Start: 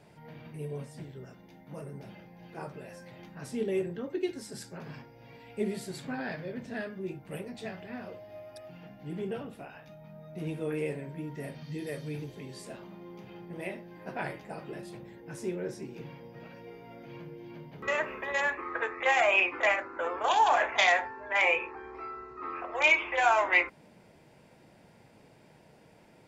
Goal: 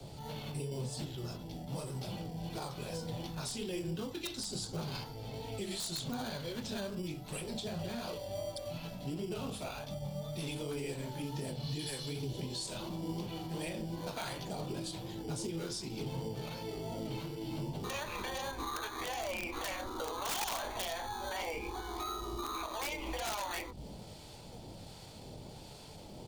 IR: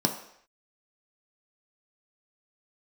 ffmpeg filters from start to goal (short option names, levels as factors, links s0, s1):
-filter_complex "[0:a]acrossover=split=130|270|1000[s0][s1][s2][s3];[s0]acompressor=threshold=0.00141:ratio=4[s4];[s1]acompressor=threshold=0.00398:ratio=4[s5];[s2]acompressor=threshold=0.00562:ratio=4[s6];[s3]acompressor=threshold=0.0158:ratio=4[s7];[s4][s5][s6][s7]amix=inputs=4:normalize=0,acrossover=split=920[s8][s9];[s8]aeval=exprs='val(0)*(1-0.5/2+0.5/2*cos(2*PI*1.3*n/s))':c=same[s10];[s9]aeval=exprs='val(0)*(1-0.5/2-0.5/2*cos(2*PI*1.3*n/s))':c=same[s11];[s10][s11]amix=inputs=2:normalize=0,asplit=2[s12][s13];[s13]acrusher=samples=16:mix=1:aa=0.000001,volume=0.299[s14];[s12][s14]amix=inputs=2:normalize=0,equalizer=f=1000:t=o:w=1:g=5,equalizer=f=2000:t=o:w=1:g=-10,equalizer=f=4000:t=o:w=1:g=7,asetrate=41625,aresample=44100,atempo=1.05946,lowshelf=f=76:g=11.5,acrossover=split=110|2800[s15][s16][s17];[s15]aecho=1:1:128.3|250.7:0.631|0.316[s18];[s16]flanger=delay=18:depth=7.7:speed=2.7[s19];[s17]acontrast=64[s20];[s18][s19][s20]amix=inputs=3:normalize=0,aeval=exprs='(mod(28.2*val(0)+1,2)-1)/28.2':c=same,alimiter=level_in=5.01:limit=0.0631:level=0:latency=1:release=155,volume=0.2,volume=2.66"